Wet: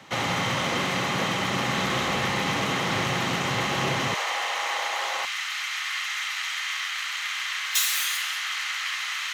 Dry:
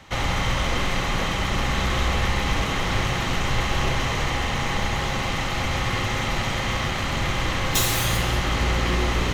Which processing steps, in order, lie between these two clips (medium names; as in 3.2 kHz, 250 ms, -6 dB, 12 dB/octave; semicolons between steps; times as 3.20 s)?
high-pass 130 Hz 24 dB/octave, from 4.14 s 570 Hz, from 5.25 s 1.4 kHz